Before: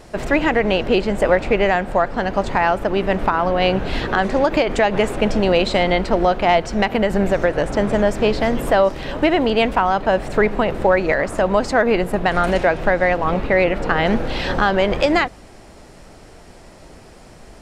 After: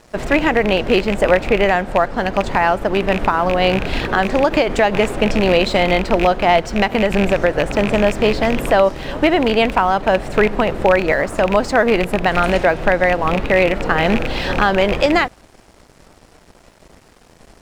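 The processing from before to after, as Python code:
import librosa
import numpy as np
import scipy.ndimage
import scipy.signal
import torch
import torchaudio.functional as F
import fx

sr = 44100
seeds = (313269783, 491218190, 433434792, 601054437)

y = fx.rattle_buzz(x, sr, strikes_db=-21.0, level_db=-12.0)
y = np.sign(y) * np.maximum(np.abs(y) - 10.0 ** (-43.5 / 20.0), 0.0)
y = F.gain(torch.from_numpy(y), 2.0).numpy()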